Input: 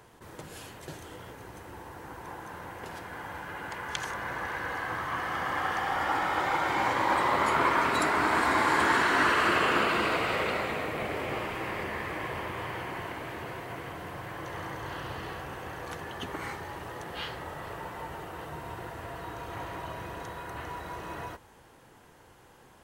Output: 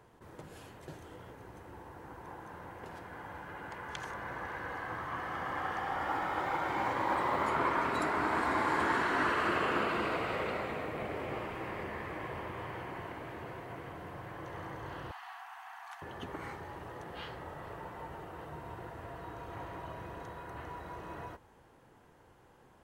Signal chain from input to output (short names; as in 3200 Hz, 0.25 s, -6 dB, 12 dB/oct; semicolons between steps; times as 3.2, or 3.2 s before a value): high shelf 2100 Hz -8.5 dB; 6.03–7.49 companded quantiser 8-bit; 15.11–16.02 brick-wall FIR high-pass 680 Hz; gain -4 dB